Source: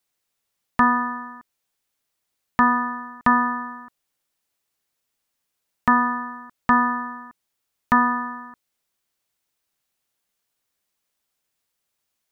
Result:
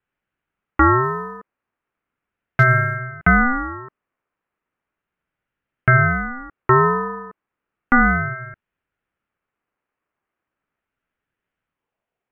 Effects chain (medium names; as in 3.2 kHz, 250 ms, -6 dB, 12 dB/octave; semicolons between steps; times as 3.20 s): high-pass sweep 1.1 kHz -> 180 Hz, 11.62–12.24 s; in parallel at 0 dB: peak limiter -8.5 dBFS, peak gain reduction 7.5 dB; on the sum: mistuned SSB -380 Hz 170–2600 Hz; 1.03–2.96 s: short-mantissa float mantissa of 6-bit; ring modulator with a swept carrier 570 Hz, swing 30%, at 0.35 Hz; trim -2.5 dB